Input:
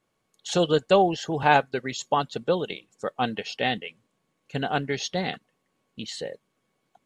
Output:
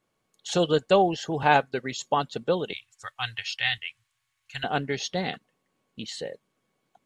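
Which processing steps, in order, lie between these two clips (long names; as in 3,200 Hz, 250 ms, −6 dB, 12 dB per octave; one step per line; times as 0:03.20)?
0:02.73–0:04.64: drawn EQ curve 120 Hz 0 dB, 180 Hz −30 dB, 510 Hz −25 dB, 750 Hz −10 dB, 1,800 Hz +4 dB
level −1 dB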